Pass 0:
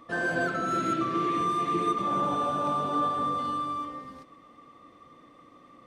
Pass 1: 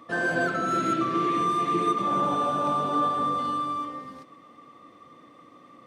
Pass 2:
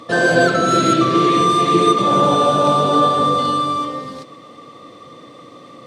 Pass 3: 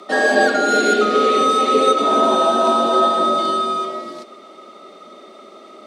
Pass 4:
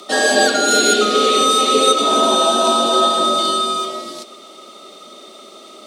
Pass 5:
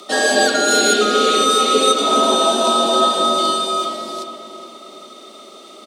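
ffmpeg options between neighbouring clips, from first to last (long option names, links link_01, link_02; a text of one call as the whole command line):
ffmpeg -i in.wav -af "highpass=100,volume=2.5dB" out.wav
ffmpeg -i in.wav -af "equalizer=frequency=125:width_type=o:width=1:gain=8,equalizer=frequency=500:width_type=o:width=1:gain=8,equalizer=frequency=4000:width_type=o:width=1:gain=10,equalizer=frequency=8000:width_type=o:width=1:gain=7,volume=7.5dB" out.wav
ffmpeg -i in.wav -af "afreqshift=89,volume=-1dB" out.wav
ffmpeg -i in.wav -af "aexciter=amount=3.5:drive=4.8:freq=2800" out.wav
ffmpeg -i in.wav -filter_complex "[0:a]asplit=2[link_01][link_02];[link_02]adelay=416,lowpass=frequency=2400:poles=1,volume=-9dB,asplit=2[link_03][link_04];[link_04]adelay=416,lowpass=frequency=2400:poles=1,volume=0.49,asplit=2[link_05][link_06];[link_06]adelay=416,lowpass=frequency=2400:poles=1,volume=0.49,asplit=2[link_07][link_08];[link_08]adelay=416,lowpass=frequency=2400:poles=1,volume=0.49,asplit=2[link_09][link_10];[link_10]adelay=416,lowpass=frequency=2400:poles=1,volume=0.49,asplit=2[link_11][link_12];[link_12]adelay=416,lowpass=frequency=2400:poles=1,volume=0.49[link_13];[link_01][link_03][link_05][link_07][link_09][link_11][link_13]amix=inputs=7:normalize=0,volume=-1dB" out.wav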